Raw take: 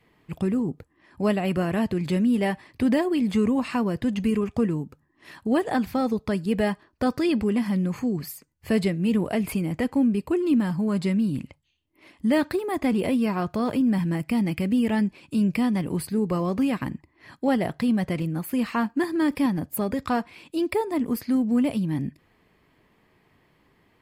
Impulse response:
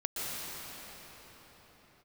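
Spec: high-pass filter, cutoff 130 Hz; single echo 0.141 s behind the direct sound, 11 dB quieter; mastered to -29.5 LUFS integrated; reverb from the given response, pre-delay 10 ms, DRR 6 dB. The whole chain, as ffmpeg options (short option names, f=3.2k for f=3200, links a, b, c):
-filter_complex "[0:a]highpass=130,aecho=1:1:141:0.282,asplit=2[a][b];[1:a]atrim=start_sample=2205,adelay=10[c];[b][c]afir=irnorm=-1:irlink=0,volume=-12.5dB[d];[a][d]amix=inputs=2:normalize=0,volume=-5dB"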